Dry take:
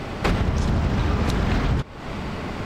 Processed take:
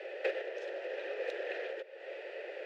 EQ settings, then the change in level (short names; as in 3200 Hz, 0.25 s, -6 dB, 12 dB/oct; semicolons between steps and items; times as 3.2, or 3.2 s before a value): vowel filter e; steep high-pass 340 Hz 96 dB/oct; +1.0 dB